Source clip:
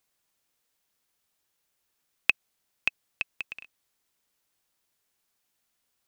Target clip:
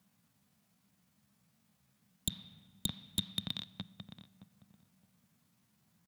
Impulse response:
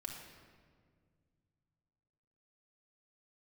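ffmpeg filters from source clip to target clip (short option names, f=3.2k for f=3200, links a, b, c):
-filter_complex "[0:a]highpass=f=66:w=0.5412,highpass=f=66:w=1.3066,lowshelf=f=190:t=q:w=3:g=10,asetrate=62367,aresample=44100,atempo=0.707107,asoftclip=type=tanh:threshold=-5.5dB,alimiter=limit=-13.5dB:level=0:latency=1:release=83,tiltshelf=f=1.2k:g=5,asplit=2[a][b];[b]adelay=618,lowpass=f=930:p=1,volume=-7dB,asplit=2[c][d];[d]adelay=618,lowpass=f=930:p=1,volume=0.23,asplit=2[e][f];[f]adelay=618,lowpass=f=930:p=1,volume=0.23[g];[a][c][e][g]amix=inputs=4:normalize=0,asplit=2[h][i];[1:a]atrim=start_sample=2205,asetrate=57330,aresample=44100[j];[i][j]afir=irnorm=-1:irlink=0,volume=-10dB[k];[h][k]amix=inputs=2:normalize=0,aeval=exprs='0.0473*(abs(mod(val(0)/0.0473+3,4)-2)-1)':c=same,volume=5.5dB"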